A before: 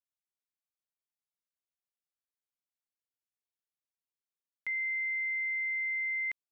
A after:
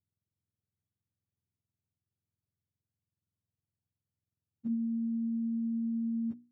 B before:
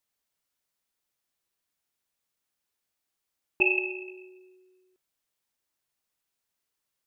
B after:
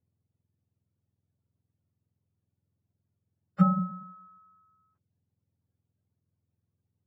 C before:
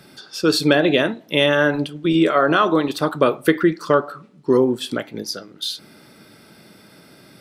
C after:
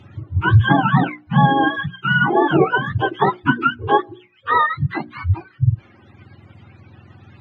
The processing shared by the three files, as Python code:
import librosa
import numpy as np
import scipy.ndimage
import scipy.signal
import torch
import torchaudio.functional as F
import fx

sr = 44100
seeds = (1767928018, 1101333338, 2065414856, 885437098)

y = fx.octave_mirror(x, sr, pivot_hz=690.0)
y = fx.lowpass(y, sr, hz=2700.0, slope=6)
y = fx.dereverb_blind(y, sr, rt60_s=0.61)
y = fx.hum_notches(y, sr, base_hz=60, count=6)
y = y * librosa.db_to_amplitude(3.5)